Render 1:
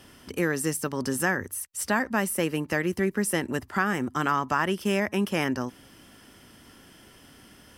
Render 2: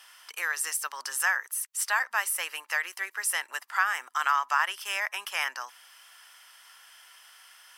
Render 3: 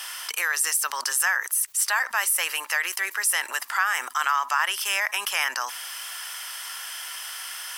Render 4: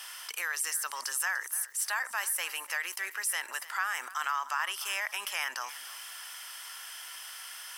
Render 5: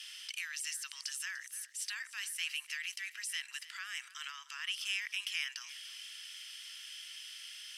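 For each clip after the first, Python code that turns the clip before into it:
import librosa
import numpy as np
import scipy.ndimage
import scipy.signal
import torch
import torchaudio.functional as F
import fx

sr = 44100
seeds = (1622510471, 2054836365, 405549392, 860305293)

y1 = scipy.signal.sosfilt(scipy.signal.butter(4, 940.0, 'highpass', fs=sr, output='sos'), x)
y1 = y1 * librosa.db_to_amplitude(2.0)
y2 = fx.high_shelf(y1, sr, hz=5000.0, db=6.0)
y2 = fx.env_flatten(y2, sr, amount_pct=50)
y3 = fx.echo_feedback(y2, sr, ms=296, feedback_pct=27, wet_db=-17.0)
y3 = y3 * librosa.db_to_amplitude(-8.5)
y4 = fx.ladder_highpass(y3, sr, hz=2200.0, resonance_pct=30)
y4 = fx.air_absorb(y4, sr, metres=63.0)
y4 = y4 * librosa.db_to_amplitude(5.5)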